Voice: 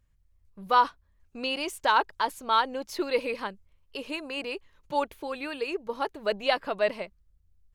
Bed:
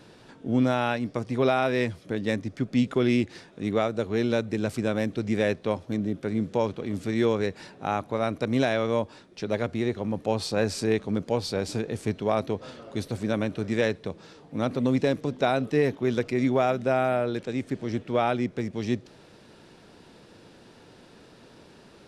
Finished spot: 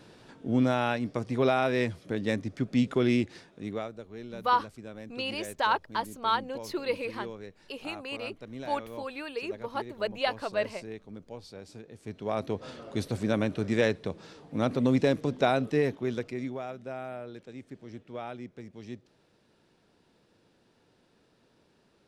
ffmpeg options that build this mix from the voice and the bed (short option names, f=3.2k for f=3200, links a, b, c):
-filter_complex "[0:a]adelay=3750,volume=-3.5dB[a];[1:a]volume=14.5dB,afade=t=out:st=3.12:d=0.91:silence=0.177828,afade=t=in:st=11.99:d=0.76:silence=0.149624,afade=t=out:st=15.43:d=1.16:silence=0.199526[b];[a][b]amix=inputs=2:normalize=0"